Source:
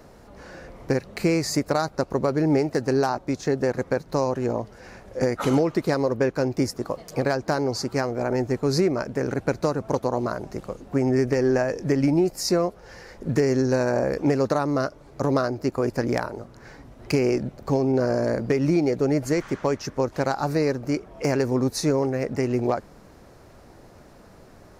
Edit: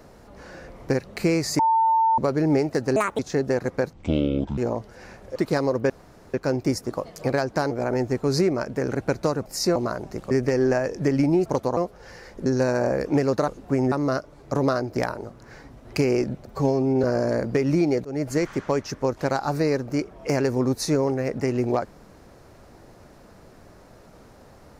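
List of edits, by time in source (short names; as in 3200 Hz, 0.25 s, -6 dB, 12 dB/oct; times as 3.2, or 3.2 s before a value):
1.59–2.18 bleep 898 Hz -16 dBFS
2.96–3.32 speed 157%
4.06–4.41 speed 54%
5.19–5.72 cut
6.26 insert room tone 0.44 s
7.63–8.1 cut
9.85–10.16 swap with 12.3–12.6
10.71–11.15 move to 14.6
13.29–13.58 cut
15.65–16.11 cut
17.61–17.99 stretch 1.5×
19–19.36 fade in equal-power, from -23 dB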